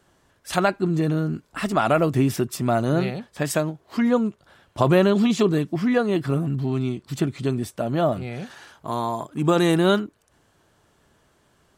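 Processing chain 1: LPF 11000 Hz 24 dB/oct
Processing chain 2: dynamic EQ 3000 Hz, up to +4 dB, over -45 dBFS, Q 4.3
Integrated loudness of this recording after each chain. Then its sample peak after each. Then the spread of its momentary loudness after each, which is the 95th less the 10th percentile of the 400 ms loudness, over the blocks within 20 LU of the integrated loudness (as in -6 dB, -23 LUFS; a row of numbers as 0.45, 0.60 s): -22.5, -22.5 LUFS; -4.5, -4.0 dBFS; 10, 10 LU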